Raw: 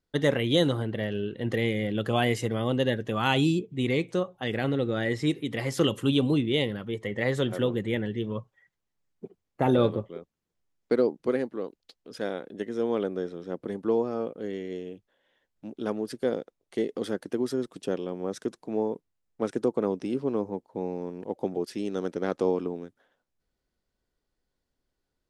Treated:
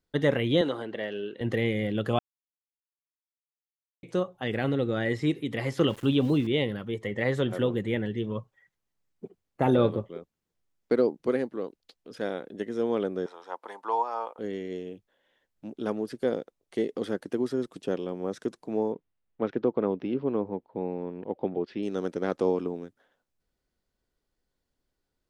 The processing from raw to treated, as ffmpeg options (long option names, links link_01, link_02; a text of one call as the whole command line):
ffmpeg -i in.wav -filter_complex "[0:a]asettb=1/sr,asplit=3[link_01][link_02][link_03];[link_01]atrim=end=0.614[link_04];[link_02]atrim=start=0.61:end=1.41,asetpts=PTS-STARTPTS,afade=type=in:duration=0.004:curve=qsin,afade=type=out:start_time=0.796:duration=0.004:curve=qsin,highpass=330,lowpass=7200[link_05];[link_03]atrim=start=1.406[link_06];[link_04][link_05]acrossfade=duration=0.004:curve1=hsin:curve2=qsin[link_07];[link_07][link_06]acrossfade=duration=0.004:curve1=qsin:curve2=hsin,asettb=1/sr,asplit=3[link_08][link_09][link_10];[link_08]atrim=end=5.874[link_11];[link_09]atrim=start=5.87:end=6.47,asetpts=PTS-STARTPTS,afade=type=in:duration=0.004:curve=qsin,afade=type=out:start_time=0.596:duration=0.004:curve=qsin,aeval=exprs='val(0)*gte(abs(val(0)),0.00891)':channel_layout=same[link_12];[link_10]atrim=start=6.466[link_13];[link_11][link_12]acrossfade=duration=0.004:curve1=hsin:curve2=qsin[link_14];[link_14][link_13]acrossfade=duration=0.004:curve1=qsin:curve2=hsin,asettb=1/sr,asplit=3[link_15][link_16][link_17];[link_15]atrim=end=13.264[link_18];[link_16]atrim=start=13.26:end=14.39,asetpts=PTS-STARTPTS,afade=type=in:duration=0.004:curve=qsin,afade=type=out:start_time=1.126:duration=0.004:curve=qsin,highpass=frequency=910:width_type=q:width=5.8[link_19];[link_17]atrim=start=14.386[link_20];[link_18][link_19]acrossfade=duration=0.004:curve1=hsin:curve2=qsin[link_21];[link_21][link_20]acrossfade=duration=0.004:curve1=qsin:curve2=hsin,asettb=1/sr,asplit=3[link_22][link_23][link_24];[link_22]atrim=end=18.924[link_25];[link_23]atrim=start=18.92:end=21.83,asetpts=PTS-STARTPTS,afade=type=in:duration=0.004:curve=qsin,afade=type=out:start_time=2.906:duration=0.004:curve=qsin,lowpass=frequency=3500:width=0.5412,lowpass=frequency=3500:width=1.3066[link_26];[link_24]atrim=start=21.826[link_27];[link_25][link_26]acrossfade=duration=0.004:curve1=hsin:curve2=qsin[link_28];[link_28][link_27]acrossfade=duration=0.004:curve1=qsin:curve2=hsin,asplit=3[link_29][link_30][link_31];[link_29]atrim=end=2.19,asetpts=PTS-STARTPTS,afade=type=out:start_time=2.186:duration=0.004:curve=hsin[link_32];[link_30]atrim=start=2.19:end=4.03,asetpts=PTS-STARTPTS,volume=0[link_33];[link_31]atrim=start=4.03,asetpts=PTS-STARTPTS,afade=type=in:duration=0.004:curve=hsin[link_34];[link_32][link_33][link_34]concat=n=3:v=0:a=1,acrossover=split=3500[link_35][link_36];[link_36]acompressor=threshold=-49dB:ratio=4:attack=1:release=60[link_37];[link_35][link_37]amix=inputs=2:normalize=0" out.wav